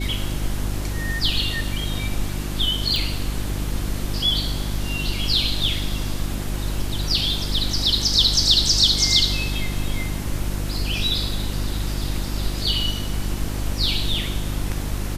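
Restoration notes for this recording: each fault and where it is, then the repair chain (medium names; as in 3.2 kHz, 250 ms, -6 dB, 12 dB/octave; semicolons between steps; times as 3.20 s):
hum 50 Hz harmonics 7 -27 dBFS
2.96 s: pop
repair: de-click; de-hum 50 Hz, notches 7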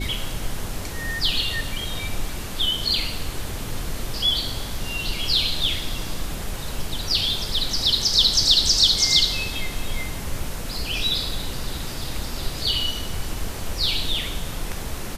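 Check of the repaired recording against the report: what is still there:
nothing left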